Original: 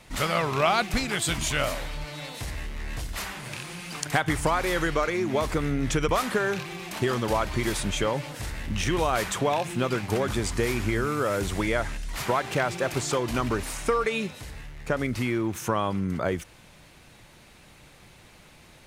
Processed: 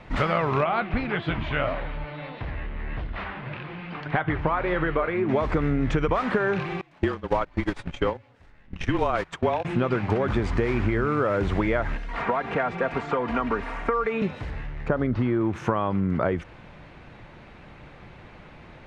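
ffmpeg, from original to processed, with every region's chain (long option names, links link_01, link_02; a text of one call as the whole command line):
ffmpeg -i in.wav -filter_complex "[0:a]asettb=1/sr,asplit=3[link_01][link_02][link_03];[link_01]atrim=end=0.644[link_04];[link_02]atrim=start=0.64:end=5.29,asetpts=PTS-STARTPTS,afade=type=in:duration=0.004:curve=qsin,afade=type=out:start_time=4.646:duration=0.004:curve=qsin,lowpass=frequency=3800:width=0.5412,lowpass=frequency=3800:width=1.3066,flanger=delay=4.7:depth=8.1:regen=68:speed=1.7:shape=triangular[link_05];[link_03]atrim=start=5.286[link_06];[link_04][link_05]acrossfade=duration=0.004:curve1=hsin:curve2=qsin[link_07];[link_07][link_06]acrossfade=duration=0.004:curve1=qsin:curve2=hsin,asettb=1/sr,asplit=3[link_08][link_09][link_10];[link_08]atrim=end=6.814[link_11];[link_09]atrim=start=6.81:end=9.65,asetpts=PTS-STARTPTS,afade=type=in:duration=0.004:curve=qsin,afade=type=out:start_time=2.836:duration=0.004:curve=qsin,highshelf=frequency=4500:gain=6.5,afreqshift=-30,agate=range=-26dB:threshold=-25dB:ratio=16:release=100:detection=peak[link_12];[link_10]atrim=start=9.646[link_13];[link_11][link_12]acrossfade=duration=0.004:curve1=hsin:curve2=qsin[link_14];[link_14][link_13]acrossfade=duration=0.004:curve1=qsin:curve2=hsin,asettb=1/sr,asplit=3[link_15][link_16][link_17];[link_15]atrim=end=11.964[link_18];[link_16]atrim=start=11.96:end=14.22,asetpts=PTS-STARTPTS,afade=type=in:duration=0.004:curve=qsin,afade=type=out:start_time=2.256:duration=0.004:curve=qsin,aecho=1:1:4.3:0.55,atrim=end_sample=99666,acrossover=split=260|610|2600[link_19][link_20][link_21][link_22];[link_19]acompressor=threshold=-43dB:ratio=3[link_23];[link_20]acompressor=threshold=-39dB:ratio=3[link_24];[link_21]acompressor=threshold=-31dB:ratio=3[link_25];[link_22]acompressor=threshold=-50dB:ratio=3[link_26];[link_23][link_24][link_25][link_26]amix=inputs=4:normalize=0[link_27];[link_17]atrim=start=14.216[link_28];[link_18][link_27]acrossfade=duration=0.004:curve1=hsin:curve2=qsin[link_29];[link_29][link_28]acrossfade=duration=0.004:curve1=qsin:curve2=hsin,asettb=1/sr,asplit=3[link_30][link_31][link_32];[link_30]atrim=end=14.884[link_33];[link_31]atrim=start=14.88:end=15.41,asetpts=PTS-STARTPTS,afade=type=in:duration=0.004:curve=qsin,afade=type=out:start_time=0.526:duration=0.004:curve=qsin,lowpass=4100,equalizer=frequency=2300:width_type=o:width=0.61:gain=-9.5[link_34];[link_32]atrim=start=15.406[link_35];[link_33][link_34]acrossfade=duration=0.004:curve1=hsin:curve2=qsin[link_36];[link_36][link_35]acrossfade=duration=0.004:curve1=qsin:curve2=hsin,lowpass=2000,acompressor=threshold=-27dB:ratio=6,volume=7.5dB" out.wav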